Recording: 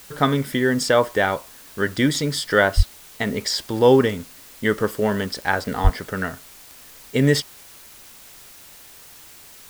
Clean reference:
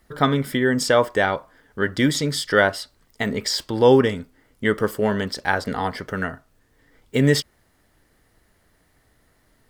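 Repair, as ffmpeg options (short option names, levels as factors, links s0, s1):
-filter_complex "[0:a]adeclick=t=4,asplit=3[s0][s1][s2];[s0]afade=t=out:st=2.76:d=0.02[s3];[s1]highpass=f=140:w=0.5412,highpass=f=140:w=1.3066,afade=t=in:st=2.76:d=0.02,afade=t=out:st=2.88:d=0.02[s4];[s2]afade=t=in:st=2.88:d=0.02[s5];[s3][s4][s5]amix=inputs=3:normalize=0,asplit=3[s6][s7][s8];[s6]afade=t=out:st=5.83:d=0.02[s9];[s7]highpass=f=140:w=0.5412,highpass=f=140:w=1.3066,afade=t=in:st=5.83:d=0.02,afade=t=out:st=5.95:d=0.02[s10];[s8]afade=t=in:st=5.95:d=0.02[s11];[s9][s10][s11]amix=inputs=3:normalize=0,afwtdn=0.0056"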